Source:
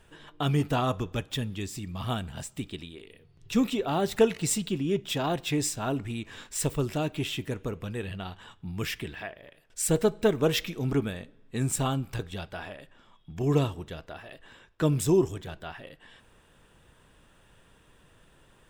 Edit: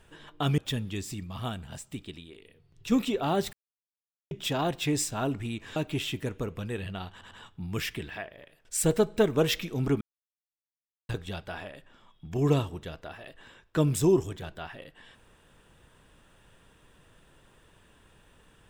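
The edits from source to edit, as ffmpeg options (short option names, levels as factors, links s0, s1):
-filter_complex "[0:a]asplit=11[s0][s1][s2][s3][s4][s5][s6][s7][s8][s9][s10];[s0]atrim=end=0.582[s11];[s1]atrim=start=1.228:end=1.892[s12];[s2]atrim=start=1.888:end=3.572,asetpts=PTS-STARTPTS,volume=0.668[s13];[s3]atrim=start=3.568:end=4.18,asetpts=PTS-STARTPTS,afade=t=out:st=0.608:d=0.004:c=hsin[s14];[s4]atrim=start=4.18:end=4.96,asetpts=PTS-STARTPTS,volume=0[s15];[s5]atrim=start=4.96:end=6.412,asetpts=PTS-STARTPTS,afade=t=in:d=0.004:c=hsin[s16];[s6]atrim=start=7.008:end=8.462[s17];[s7]atrim=start=8.358:end=8.462[s18];[s8]atrim=start=8.358:end=11.06,asetpts=PTS-STARTPTS,afade=t=out:st=2.698:d=0.004:c=hsin[s19];[s9]atrim=start=11.06:end=12.14,asetpts=PTS-STARTPTS,volume=0[s20];[s10]atrim=start=12.14,asetpts=PTS-STARTPTS,afade=t=in:d=0.004:c=hsin[s21];[s11][s12]acrossfade=d=0.004:c1=hsin:c2=hsin[s22];[s22][s13]acrossfade=d=0.004:c1=hsin:c2=hsin[s23];[s14][s15][s16]concat=n=3:v=0:a=1[s24];[s23][s24]acrossfade=d=0.004:c1=hsin:c2=hsin[s25];[s25][s17]acrossfade=d=0.004:c1=hsin:c2=hsin[s26];[s26][s18]acrossfade=d=0.004:c1=hsin:c2=hsin[s27];[s19][s20][s21]concat=n=3:v=0:a=1[s28];[s27][s28]acrossfade=d=0.004:c1=hsin:c2=hsin"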